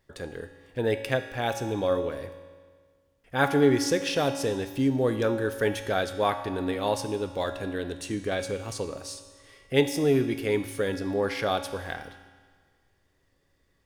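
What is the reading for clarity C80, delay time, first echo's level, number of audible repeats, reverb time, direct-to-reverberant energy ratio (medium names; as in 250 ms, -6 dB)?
10.0 dB, no echo, no echo, no echo, 1.7 s, 7.0 dB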